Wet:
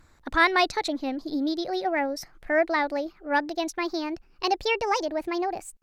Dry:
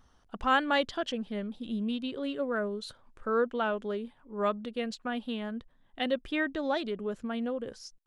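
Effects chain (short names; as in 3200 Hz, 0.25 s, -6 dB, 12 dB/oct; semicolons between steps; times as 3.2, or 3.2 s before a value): speed glide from 125% -> 152%; gain +5.5 dB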